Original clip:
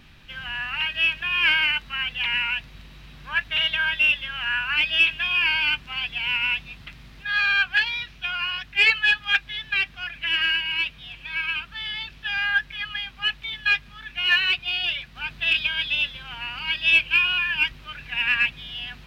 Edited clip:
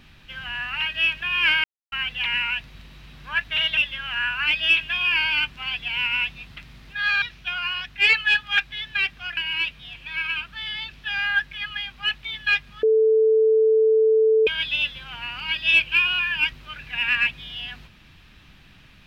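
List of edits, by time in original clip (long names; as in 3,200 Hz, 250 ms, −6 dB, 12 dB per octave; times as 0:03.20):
0:01.64–0:01.92: silence
0:03.77–0:04.07: remove
0:07.52–0:07.99: remove
0:10.14–0:10.56: remove
0:14.02–0:15.66: beep over 440 Hz −14 dBFS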